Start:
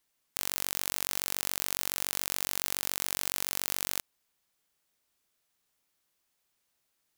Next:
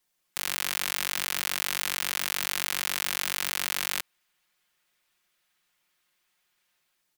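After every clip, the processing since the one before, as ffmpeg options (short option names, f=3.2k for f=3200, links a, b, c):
-filter_complex "[0:a]aecho=1:1:5.6:0.58,acrossover=split=340|1200|3500[a][b][c][d];[c]dynaudnorm=f=150:g=5:m=9.5dB[e];[a][b][e][d]amix=inputs=4:normalize=0"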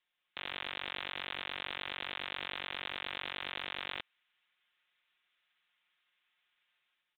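-af "tiltshelf=f=850:g=-7.5,aresample=8000,asoftclip=type=hard:threshold=-23dB,aresample=44100,volume=-6.5dB"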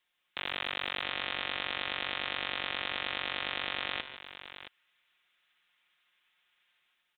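-af "aecho=1:1:147|670:0.188|0.251,volume=5dB"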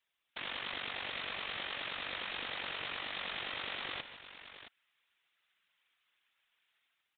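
-af "afftfilt=real='hypot(re,im)*cos(2*PI*random(0))':imag='hypot(re,im)*sin(2*PI*random(1))':win_size=512:overlap=0.75,volume=1dB"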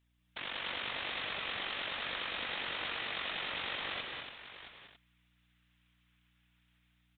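-af "aeval=exprs='val(0)+0.0002*(sin(2*PI*60*n/s)+sin(2*PI*2*60*n/s)/2+sin(2*PI*3*60*n/s)/3+sin(2*PI*4*60*n/s)/4+sin(2*PI*5*60*n/s)/5)':c=same,aecho=1:1:189.5|221.6|282.8:0.562|0.316|0.398"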